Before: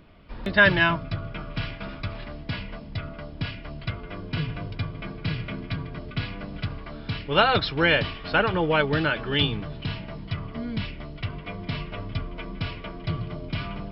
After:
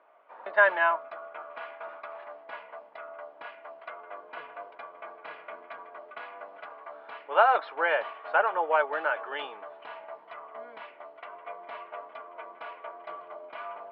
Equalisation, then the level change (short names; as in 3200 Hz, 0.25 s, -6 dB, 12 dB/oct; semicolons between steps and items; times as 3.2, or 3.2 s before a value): HPF 680 Hz 24 dB/oct; LPF 1000 Hz 12 dB/oct; air absorption 180 m; +6.0 dB